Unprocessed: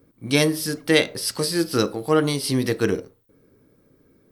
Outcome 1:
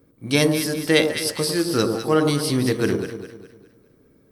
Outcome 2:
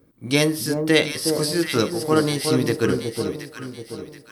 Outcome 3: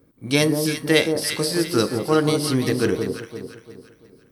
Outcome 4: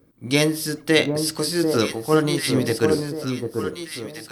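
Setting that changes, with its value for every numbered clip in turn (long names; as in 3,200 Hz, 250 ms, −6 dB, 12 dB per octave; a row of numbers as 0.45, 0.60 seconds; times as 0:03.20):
delay that swaps between a low-pass and a high-pass, delay time: 102, 365, 172, 741 milliseconds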